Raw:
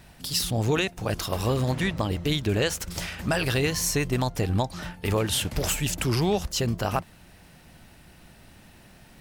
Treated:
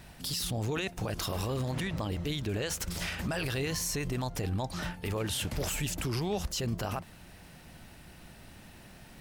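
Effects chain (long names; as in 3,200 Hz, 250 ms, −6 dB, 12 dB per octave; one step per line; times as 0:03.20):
brickwall limiter −24 dBFS, peak gain reduction 11.5 dB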